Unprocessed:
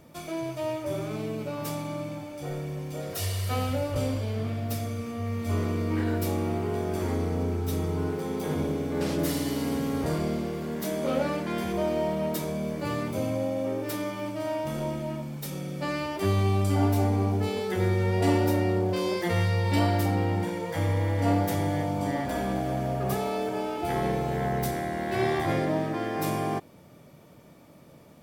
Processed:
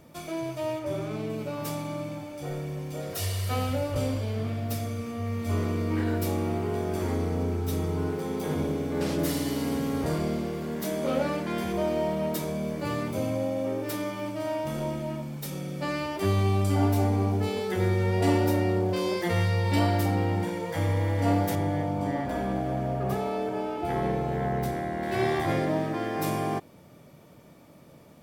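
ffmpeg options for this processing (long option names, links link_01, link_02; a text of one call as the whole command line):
ffmpeg -i in.wav -filter_complex "[0:a]asettb=1/sr,asplit=3[link_01][link_02][link_03];[link_01]atrim=end=0.794[link_04];[link_02]atrim=start=0.79:end=1.3,asetpts=PTS-STARTPTS,afade=type=in:duration=0.004:curve=qsin,afade=type=out:start_time=0.506:duration=0.004:curve=qsin,highshelf=frequency=6400:gain=-6.5[link_05];[link_03]atrim=start=1.296[link_06];[link_04][link_05]acrossfade=duration=0.004:curve1=hsin:curve2=qsin[link_07];[link_07][link_06]acrossfade=duration=0.004:curve1=qsin:curve2=hsin,asettb=1/sr,asplit=3[link_08][link_09][link_10];[link_08]atrim=end=21.554[link_11];[link_09]atrim=start=21.55:end=25.03,asetpts=PTS-STARTPTS,afade=type=in:duration=0.004:curve=qsin,afade=type=out:start_time=3.476:duration=0.004:curve=qsin,highshelf=frequency=3100:gain=-9[link_12];[link_10]atrim=start=25.026[link_13];[link_11][link_12]acrossfade=duration=0.004:curve1=hsin:curve2=qsin[link_14];[link_14][link_13]acrossfade=duration=0.004:curve1=qsin:curve2=hsin" out.wav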